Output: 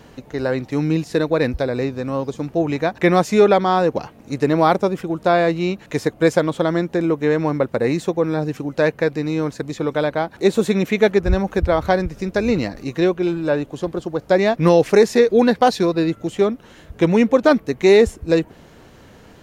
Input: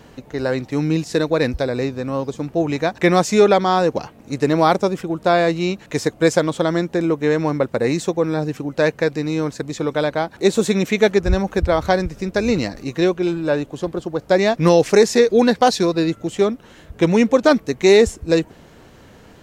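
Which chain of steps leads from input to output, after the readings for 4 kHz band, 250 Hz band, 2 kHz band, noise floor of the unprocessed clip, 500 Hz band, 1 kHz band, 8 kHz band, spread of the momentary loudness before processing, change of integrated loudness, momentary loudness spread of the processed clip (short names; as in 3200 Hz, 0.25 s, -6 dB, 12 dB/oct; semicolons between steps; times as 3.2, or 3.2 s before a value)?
-3.5 dB, 0.0 dB, -1.0 dB, -46 dBFS, 0.0 dB, 0.0 dB, -6.5 dB, 10 LU, 0.0 dB, 10 LU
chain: notch 7800 Hz, Q 26; dynamic EQ 6300 Hz, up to -7 dB, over -42 dBFS, Q 0.88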